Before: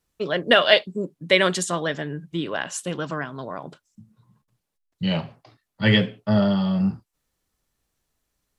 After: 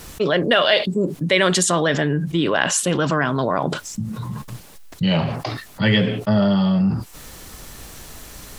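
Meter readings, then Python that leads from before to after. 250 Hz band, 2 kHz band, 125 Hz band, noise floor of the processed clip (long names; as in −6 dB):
+4.5 dB, +2.5 dB, +5.5 dB, −43 dBFS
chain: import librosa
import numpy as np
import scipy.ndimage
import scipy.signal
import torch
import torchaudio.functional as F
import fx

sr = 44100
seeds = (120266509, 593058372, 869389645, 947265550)

y = fx.env_flatten(x, sr, amount_pct=70)
y = y * librosa.db_to_amplitude(-2.5)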